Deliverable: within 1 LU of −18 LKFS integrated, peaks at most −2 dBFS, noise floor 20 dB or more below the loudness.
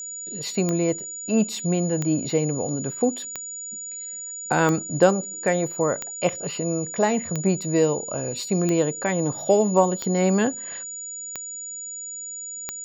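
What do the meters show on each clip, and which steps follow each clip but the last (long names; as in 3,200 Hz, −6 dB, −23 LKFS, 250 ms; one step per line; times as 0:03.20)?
number of clicks 10; interfering tone 6,900 Hz; level of the tone −32 dBFS; integrated loudness −24.5 LKFS; sample peak −4.5 dBFS; target loudness −18.0 LKFS
→ click removal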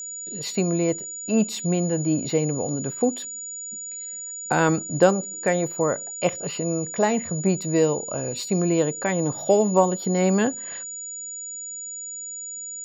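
number of clicks 0; interfering tone 6,900 Hz; level of the tone −32 dBFS
→ notch filter 6,900 Hz, Q 30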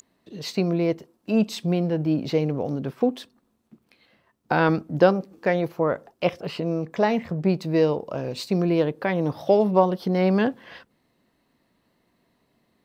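interfering tone none found; integrated loudness −24.0 LKFS; sample peak −4.5 dBFS; target loudness −18.0 LKFS
→ level +6 dB
brickwall limiter −2 dBFS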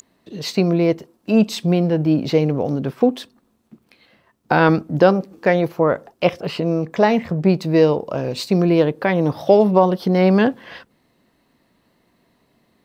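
integrated loudness −18.0 LKFS; sample peak −2.0 dBFS; background noise floor −64 dBFS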